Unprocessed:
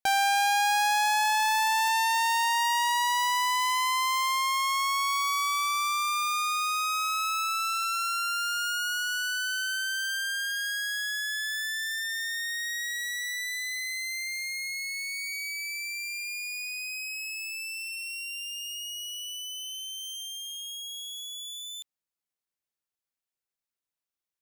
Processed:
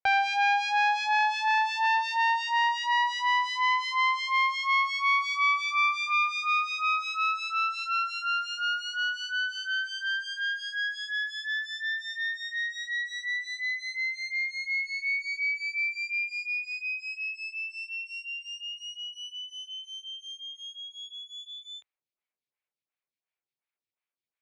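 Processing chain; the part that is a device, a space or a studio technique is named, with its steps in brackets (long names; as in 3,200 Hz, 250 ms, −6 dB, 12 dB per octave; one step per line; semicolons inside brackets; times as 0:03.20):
vibe pedal into a guitar amplifier (phaser with staggered stages 2.8 Hz; tube saturation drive 26 dB, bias 0.65; loudspeaker in its box 85–4,600 Hz, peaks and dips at 100 Hz +4 dB, 190 Hz −5 dB, 280 Hz −3 dB, 2,300 Hz +8 dB)
level +5.5 dB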